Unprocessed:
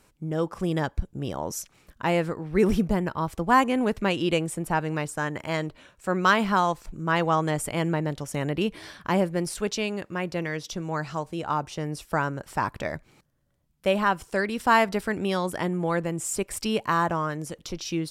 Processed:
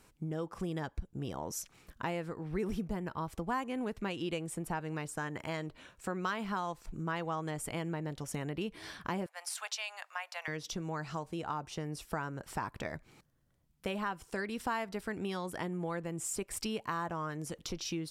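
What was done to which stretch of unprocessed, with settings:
0:09.26–0:10.48: Butterworth high-pass 680 Hz 48 dB per octave
whole clip: notch filter 580 Hz, Q 12; downward compressor 3 to 1, threshold −34 dBFS; level −2 dB

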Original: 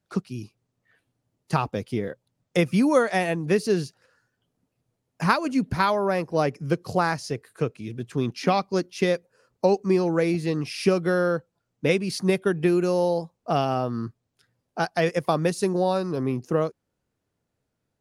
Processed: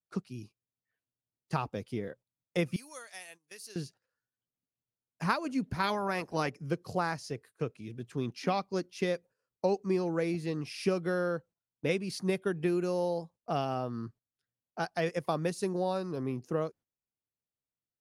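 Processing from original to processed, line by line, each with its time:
0:02.76–0:03.76: first difference
0:05.83–0:06.49: ceiling on every frequency bin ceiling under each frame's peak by 13 dB
whole clip: noise gate −44 dBFS, range −15 dB; level −8.5 dB

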